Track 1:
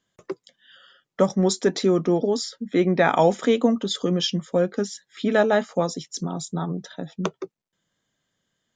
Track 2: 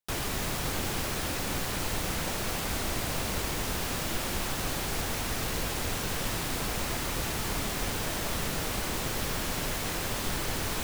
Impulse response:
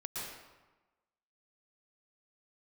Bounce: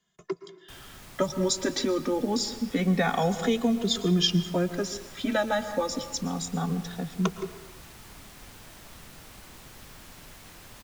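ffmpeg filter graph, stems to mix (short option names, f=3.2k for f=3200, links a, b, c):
-filter_complex "[0:a]asplit=2[a][b];[b]adelay=2.4,afreqshift=-0.27[c];[a][c]amix=inputs=2:normalize=1,volume=2dB,asplit=2[d][e];[e]volume=-12.5dB[f];[1:a]adelay=600,volume=-15.5dB[g];[2:a]atrim=start_sample=2205[h];[f][h]afir=irnorm=-1:irlink=0[i];[d][g][i]amix=inputs=3:normalize=0,equalizer=f=470:t=o:w=1:g=-4,acrossover=split=170|3000[j][k][l];[k]acompressor=threshold=-23dB:ratio=6[m];[j][m][l]amix=inputs=3:normalize=0"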